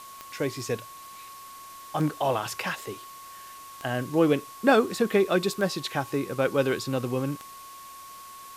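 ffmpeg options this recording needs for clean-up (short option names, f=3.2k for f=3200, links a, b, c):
-af "adeclick=t=4,bandreject=f=1.1k:w=30,afwtdn=0.004"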